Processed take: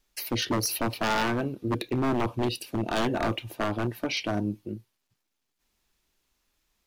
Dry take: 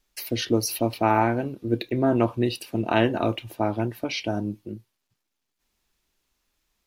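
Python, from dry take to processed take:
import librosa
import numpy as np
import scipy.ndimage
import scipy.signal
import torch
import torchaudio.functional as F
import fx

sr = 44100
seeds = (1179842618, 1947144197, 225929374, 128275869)

y = fx.peak_eq(x, sr, hz=1100.0, db=-5.5, octaves=1.9, at=(1.91, 3.12))
y = 10.0 ** (-19.5 / 20.0) * (np.abs((y / 10.0 ** (-19.5 / 20.0) + 3.0) % 4.0 - 2.0) - 1.0)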